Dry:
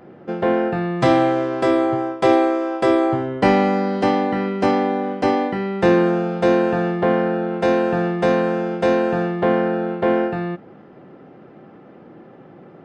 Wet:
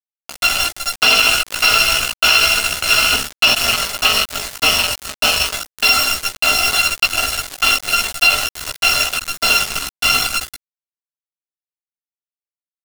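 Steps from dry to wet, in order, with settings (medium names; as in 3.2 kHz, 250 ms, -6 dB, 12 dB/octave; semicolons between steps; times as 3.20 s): bit-reversed sample order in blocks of 256 samples; level-controlled noise filter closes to 1.2 kHz, open at -16.5 dBFS; in parallel at -2 dB: compression 16:1, threshold -30 dBFS, peak gain reduction 19.5 dB; on the sum: doubling 39 ms -9 dB; on a send at -22.5 dB: reverberation RT60 4.2 s, pre-delay 70 ms; on the sum: volume shaper 85 bpm, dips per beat 1, -10 dB, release 221 ms; cabinet simulation 290–3800 Hz, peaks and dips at 330 Hz -7 dB, 770 Hz +6 dB, 2.2 kHz -4 dB; feedback delay 297 ms, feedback 46%, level -22 dB; small samples zeroed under -28 dBFS; chorus voices 4, 0.33 Hz, delay 16 ms, depth 2.9 ms; loudness maximiser +19.5 dB; trim -1 dB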